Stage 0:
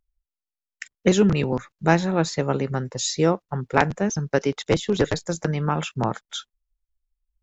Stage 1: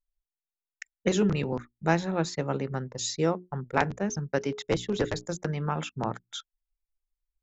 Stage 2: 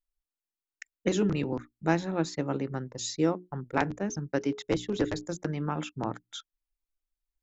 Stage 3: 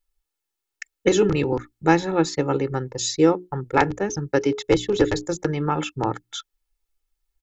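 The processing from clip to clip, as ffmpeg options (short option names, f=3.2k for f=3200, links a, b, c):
-af "bandreject=f=60:t=h:w=6,bandreject=f=120:t=h:w=6,bandreject=f=180:t=h:w=6,bandreject=f=240:t=h:w=6,bandreject=f=300:t=h:w=6,bandreject=f=360:t=h:w=6,bandreject=f=420:t=h:w=6,anlmdn=0.631,volume=-6dB"
-af "equalizer=f=300:t=o:w=0.25:g=11,volume=-3dB"
-af "aecho=1:1:2.3:0.54,volume=8dB"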